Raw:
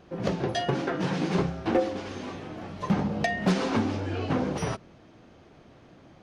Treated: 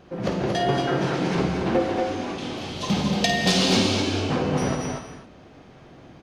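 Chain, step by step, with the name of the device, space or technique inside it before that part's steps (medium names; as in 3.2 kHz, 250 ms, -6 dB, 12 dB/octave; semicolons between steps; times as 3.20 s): parallel distortion (in parallel at -8 dB: hard clipper -30 dBFS, distortion -6 dB); 2.38–4.13 s: on the sum: resonant high shelf 2.4 kHz +11 dB, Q 1.5; loudspeakers at several distances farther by 18 m -9 dB, 79 m -5 dB; gated-style reverb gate 290 ms flat, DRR 4.5 dB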